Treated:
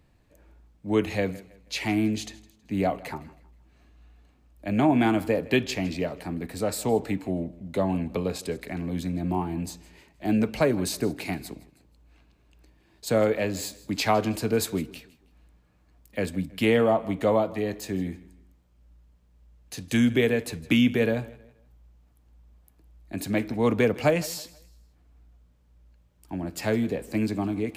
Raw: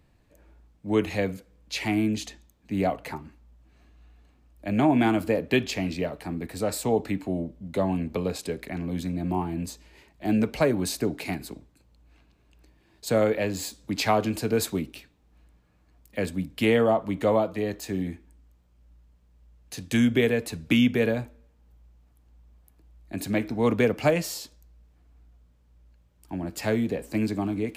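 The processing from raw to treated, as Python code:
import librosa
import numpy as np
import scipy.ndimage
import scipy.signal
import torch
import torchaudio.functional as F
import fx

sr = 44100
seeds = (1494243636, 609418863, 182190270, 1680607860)

y = fx.echo_feedback(x, sr, ms=160, feedback_pct=35, wet_db=-20.5)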